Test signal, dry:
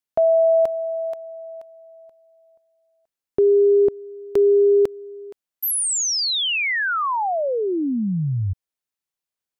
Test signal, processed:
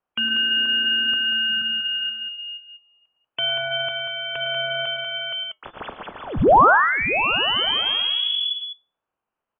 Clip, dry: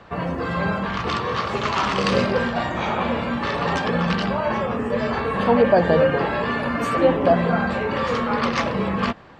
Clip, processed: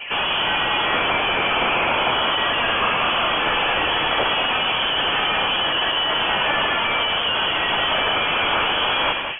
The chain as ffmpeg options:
-filter_complex "[0:a]highpass=f=350:p=1,afftdn=nr=19:nf=-43,tiltshelf=f=720:g=4,acontrast=50,alimiter=limit=-14dB:level=0:latency=1:release=15,acompressor=threshold=-21dB:ratio=4:attack=6:release=36:knee=1:detection=rms,asplit=2[a][b];[b]highpass=f=720:p=1,volume=31dB,asoftclip=type=tanh:threshold=-14dB[c];[a][c]amix=inputs=2:normalize=0,lowpass=f=2.2k:p=1,volume=-6dB,aexciter=amount=10.8:drive=1:freq=2.2k,flanger=delay=4.3:depth=8:regen=-85:speed=0.37:shape=sinusoidal,asplit=2[d][e];[e]aecho=0:1:107.9|189.5:0.251|0.447[f];[d][f]amix=inputs=2:normalize=0,lowpass=f=3k:t=q:w=0.5098,lowpass=f=3k:t=q:w=0.6013,lowpass=f=3k:t=q:w=0.9,lowpass=f=3k:t=q:w=2.563,afreqshift=-3500"

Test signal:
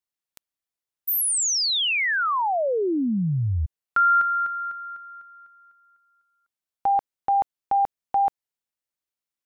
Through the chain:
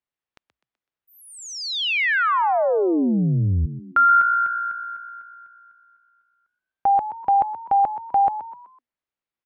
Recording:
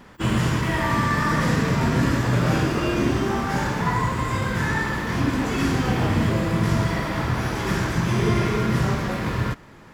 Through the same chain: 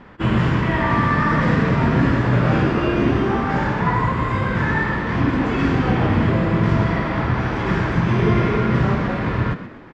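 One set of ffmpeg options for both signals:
-filter_complex "[0:a]lowpass=2.7k,asplit=2[a][b];[b]asplit=4[c][d][e][f];[c]adelay=126,afreqshift=59,volume=-12.5dB[g];[d]adelay=252,afreqshift=118,volume=-20.5dB[h];[e]adelay=378,afreqshift=177,volume=-28.4dB[i];[f]adelay=504,afreqshift=236,volume=-36.4dB[j];[g][h][i][j]amix=inputs=4:normalize=0[k];[a][k]amix=inputs=2:normalize=0,volume=3.5dB"

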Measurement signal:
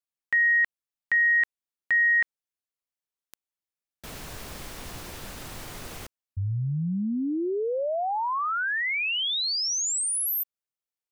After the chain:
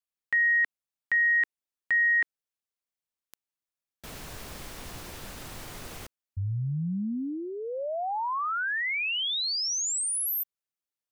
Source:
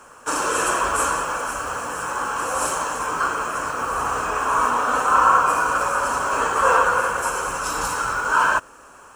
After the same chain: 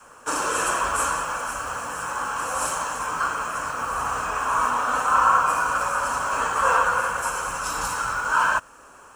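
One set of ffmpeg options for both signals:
-af "adynamicequalizer=threshold=0.00794:dfrequency=380:dqfactor=1.6:tfrequency=380:tqfactor=1.6:attack=5:release=100:ratio=0.375:range=4:mode=cutabove:tftype=bell,volume=-2dB"

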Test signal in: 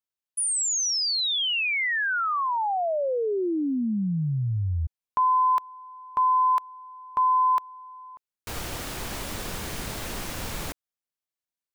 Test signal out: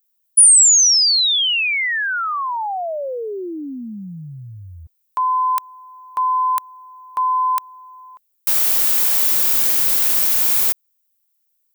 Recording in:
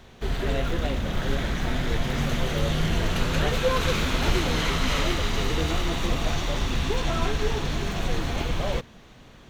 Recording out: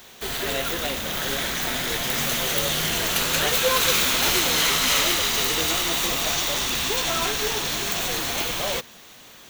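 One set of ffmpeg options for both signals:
-af "aemphasis=mode=production:type=riaa,volume=3dB"

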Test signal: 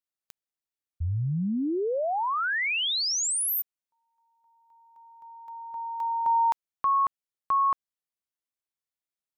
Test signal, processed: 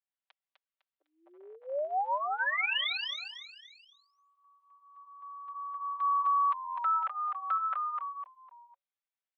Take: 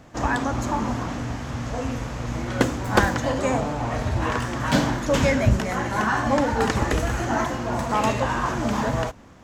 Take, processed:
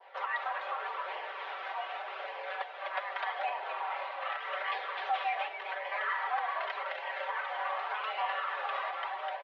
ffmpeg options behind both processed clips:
-filter_complex "[0:a]asplit=2[a][b];[b]asplit=4[c][d][e][f];[c]adelay=252,afreqshift=-90,volume=-6dB[g];[d]adelay=504,afreqshift=-180,volume=-14.9dB[h];[e]adelay=756,afreqshift=-270,volume=-23.7dB[i];[f]adelay=1008,afreqshift=-360,volume=-32.6dB[j];[g][h][i][j]amix=inputs=4:normalize=0[k];[a][k]amix=inputs=2:normalize=0,flanger=delay=0.4:depth=1.9:regen=-55:speed=0.85:shape=sinusoidal,adynamicequalizer=threshold=0.00708:dfrequency=2300:dqfactor=1.4:tfrequency=2300:tqfactor=1.4:attack=5:release=100:ratio=0.375:range=1.5:mode=boostabove:tftype=bell,acompressor=threshold=-27dB:ratio=6:attack=0.13:release=288:knee=1:detection=rms,highpass=f=360:t=q:w=0.5412,highpass=f=360:t=q:w=1.307,lowpass=f=3.5k:t=q:w=0.5176,lowpass=f=3.5k:t=q:w=0.7071,lowpass=f=3.5k:t=q:w=1.932,afreqshift=210,aecho=1:1:5.2:0.78"

